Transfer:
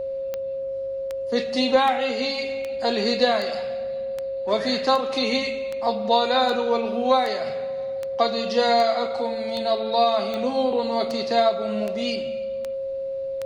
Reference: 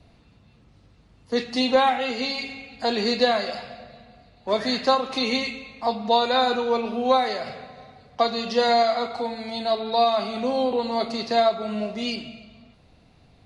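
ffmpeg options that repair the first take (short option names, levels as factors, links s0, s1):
-af "adeclick=t=4,bandreject=f=540:w=30"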